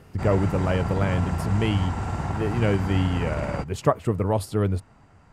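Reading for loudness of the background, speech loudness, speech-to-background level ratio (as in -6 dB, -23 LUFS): -29.5 LUFS, -25.5 LUFS, 4.0 dB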